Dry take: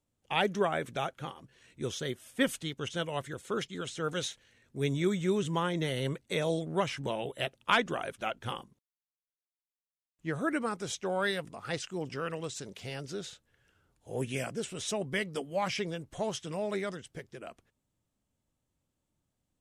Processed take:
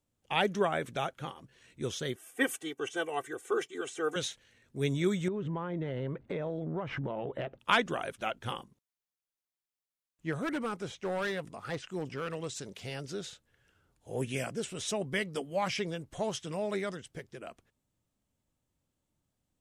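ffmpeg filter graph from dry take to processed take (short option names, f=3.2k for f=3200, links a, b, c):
-filter_complex "[0:a]asettb=1/sr,asplit=3[a][b][c];[a]atrim=end=2.164[d];[b]atrim=start=2.16:end=4.16,asetpts=PTS-STARTPTS,afade=t=in:d=0.004:c=qsin,afade=t=out:st=1.996:d=0.004:c=qsin,highpass=290,equalizer=f=4.2k:t=o:w=0.85:g=-12.5,aecho=1:1:2.6:0.96,atrim=end_sample=88200[e];[c]atrim=start=4.156[f];[d][e]acrossfade=d=0.004:c1=hsin:c2=qsin[g];[g][f]acrossfade=d=0.004:c1=qsin:c2=hsin,asettb=1/sr,asplit=3[h][i][j];[h]atrim=end=5.284[k];[i]atrim=start=5.28:end=7.59,asetpts=PTS-STARTPTS,afade=t=in:d=0.004:c=qsin,afade=t=out:st=2.306:d=0.004:c=qsin,lowpass=1.4k,acompressor=threshold=-44dB:ratio=8:attack=3.2:release=140:knee=1:detection=peak,aeval=exprs='0.0841*sin(PI/2*2.51*val(0)/0.0841)':c=same[l];[j]atrim=start=7.586[m];[k][l]acrossfade=d=0.004:c1=hsin:c2=qsin[n];[n][m]acrossfade=d=0.004:c1=qsin:c2=hsin,asettb=1/sr,asplit=3[o][p][q];[o]atrim=end=10.324[r];[p]atrim=start=10.32:end=12.47,asetpts=PTS-STARTPTS,afade=t=in:d=0.004:c=qsin,afade=t=out:st=2.146:d=0.004:c=qsin,acrossover=split=3000[s][t];[t]acompressor=threshold=-52dB:ratio=4:attack=1:release=60[u];[s][u]amix=inputs=2:normalize=0,volume=29dB,asoftclip=hard,volume=-29dB[v];[q]atrim=start=12.466[w];[r][v]acrossfade=d=0.004:c1=hsin:c2=qsin[x];[x][w]acrossfade=d=0.004:c1=qsin:c2=hsin"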